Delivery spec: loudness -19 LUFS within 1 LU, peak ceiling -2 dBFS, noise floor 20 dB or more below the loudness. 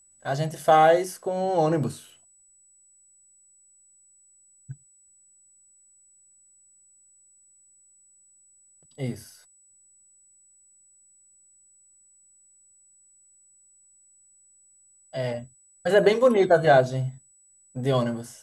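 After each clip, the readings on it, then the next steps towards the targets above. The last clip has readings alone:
steady tone 7900 Hz; tone level -56 dBFS; loudness -23.0 LUFS; peak -6.5 dBFS; loudness target -19.0 LUFS
-> notch 7900 Hz, Q 30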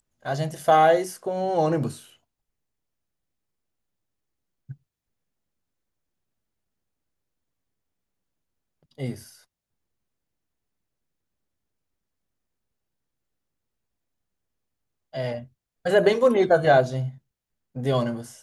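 steady tone none; loudness -22.5 LUFS; peak -6.5 dBFS; loudness target -19.0 LUFS
-> gain +3.5 dB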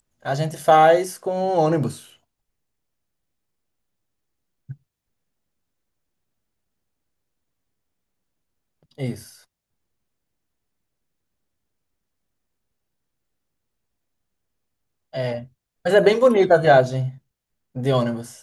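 loudness -19.0 LUFS; peak -3.0 dBFS; noise floor -80 dBFS

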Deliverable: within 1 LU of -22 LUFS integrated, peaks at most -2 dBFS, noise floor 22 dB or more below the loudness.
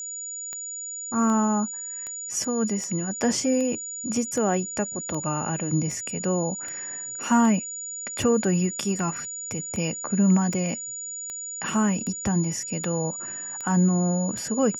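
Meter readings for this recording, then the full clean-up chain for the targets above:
clicks 19; steady tone 6900 Hz; tone level -32 dBFS; loudness -25.5 LUFS; peak -9.5 dBFS; loudness target -22.0 LUFS
-> de-click; notch 6900 Hz, Q 30; gain +3.5 dB

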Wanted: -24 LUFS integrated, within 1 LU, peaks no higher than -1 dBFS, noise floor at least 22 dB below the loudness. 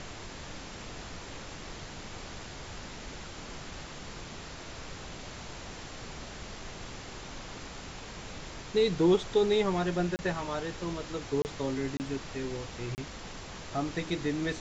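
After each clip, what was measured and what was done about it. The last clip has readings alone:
dropouts 4; longest dropout 29 ms; noise floor -44 dBFS; noise floor target -57 dBFS; loudness -34.5 LUFS; peak -14.5 dBFS; loudness target -24.0 LUFS
-> interpolate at 10.16/11.42/11.97/12.95, 29 ms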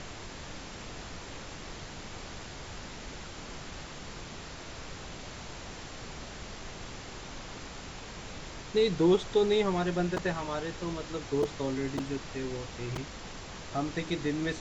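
dropouts 0; noise floor -44 dBFS; noise floor target -57 dBFS
-> noise print and reduce 13 dB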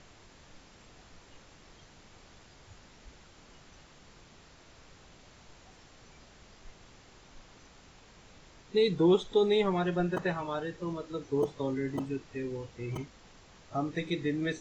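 noise floor -57 dBFS; loudness -31.0 LUFS; peak -15.0 dBFS; loudness target -24.0 LUFS
-> gain +7 dB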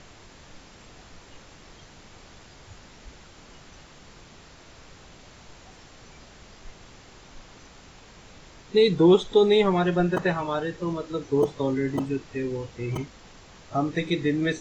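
loudness -24.0 LUFS; peak -8.0 dBFS; noise floor -50 dBFS

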